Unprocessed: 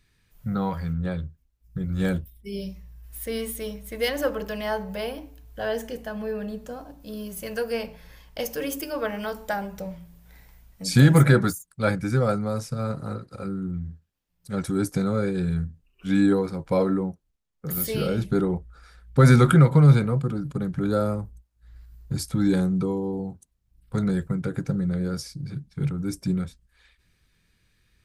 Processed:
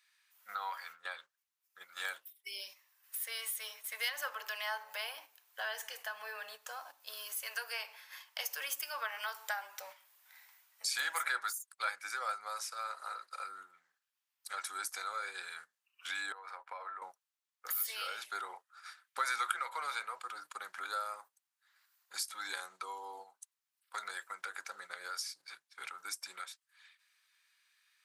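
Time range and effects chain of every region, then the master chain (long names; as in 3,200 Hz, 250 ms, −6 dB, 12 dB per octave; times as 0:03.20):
0:16.32–0:17.02: three-way crossover with the lows and the highs turned down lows −15 dB, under 400 Hz, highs −17 dB, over 2,400 Hz + downward compressor 5 to 1, threshold −35 dBFS
whole clip: high-pass filter 970 Hz 24 dB per octave; noise gate −54 dBFS, range −8 dB; downward compressor 2 to 1, threshold −49 dBFS; level +6 dB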